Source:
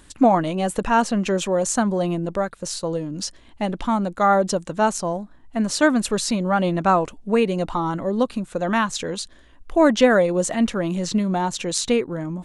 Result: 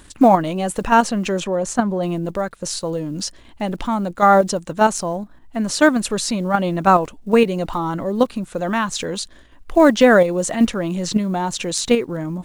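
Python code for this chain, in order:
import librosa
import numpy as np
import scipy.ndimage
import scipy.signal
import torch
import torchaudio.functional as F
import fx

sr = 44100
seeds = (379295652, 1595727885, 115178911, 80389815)

p1 = fx.block_float(x, sr, bits=7)
p2 = fx.high_shelf(p1, sr, hz=3600.0, db=-10.5, at=(1.4, 2.03))
p3 = fx.level_steps(p2, sr, step_db=17)
p4 = p2 + (p3 * 10.0 ** (3.0 / 20.0))
y = p4 * 10.0 ** (-2.0 / 20.0)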